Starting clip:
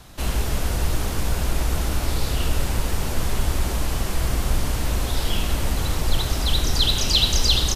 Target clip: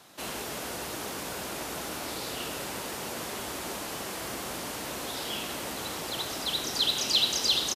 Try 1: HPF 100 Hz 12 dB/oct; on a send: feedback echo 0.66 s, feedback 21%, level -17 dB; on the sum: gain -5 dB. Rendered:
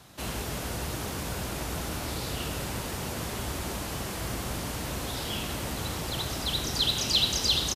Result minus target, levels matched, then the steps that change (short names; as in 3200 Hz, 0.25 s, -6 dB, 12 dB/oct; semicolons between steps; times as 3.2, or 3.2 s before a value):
125 Hz band +11.5 dB
change: HPF 270 Hz 12 dB/oct